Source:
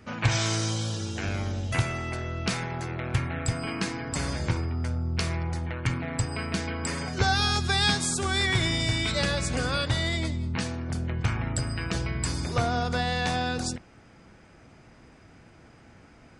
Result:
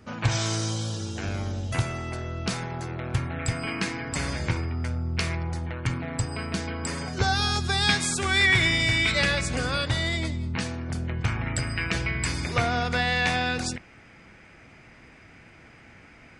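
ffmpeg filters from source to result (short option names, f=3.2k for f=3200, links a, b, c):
-af "asetnsamples=n=441:p=0,asendcmd='3.39 equalizer g 5;5.35 equalizer g -1.5;7.89 equalizer g 9.5;9.41 equalizer g 2.5;11.46 equalizer g 10.5',equalizer=f=2.2k:t=o:w=0.97:g=-3.5"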